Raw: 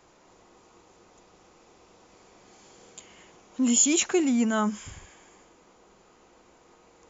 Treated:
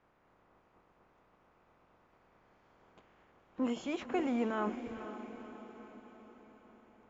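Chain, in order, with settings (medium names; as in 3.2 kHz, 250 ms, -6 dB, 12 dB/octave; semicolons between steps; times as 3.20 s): spectral peaks clipped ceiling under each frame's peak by 15 dB; low-pass 1.4 kHz 12 dB/octave; echo that smears into a reverb 495 ms, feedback 55%, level -10.5 dB; trim -8 dB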